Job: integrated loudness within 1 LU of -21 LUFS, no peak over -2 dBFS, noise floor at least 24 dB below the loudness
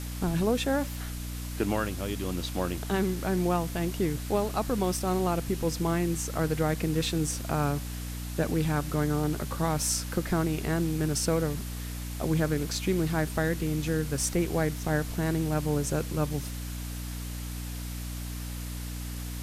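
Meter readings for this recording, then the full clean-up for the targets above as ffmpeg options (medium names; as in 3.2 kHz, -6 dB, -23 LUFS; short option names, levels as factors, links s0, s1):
hum 60 Hz; highest harmonic 300 Hz; hum level -34 dBFS; noise floor -36 dBFS; noise floor target -54 dBFS; loudness -29.5 LUFS; peak level -13.0 dBFS; loudness target -21.0 LUFS
-> -af "bandreject=f=60:t=h:w=6,bandreject=f=120:t=h:w=6,bandreject=f=180:t=h:w=6,bandreject=f=240:t=h:w=6,bandreject=f=300:t=h:w=6"
-af "afftdn=nr=18:nf=-36"
-af "volume=2.66"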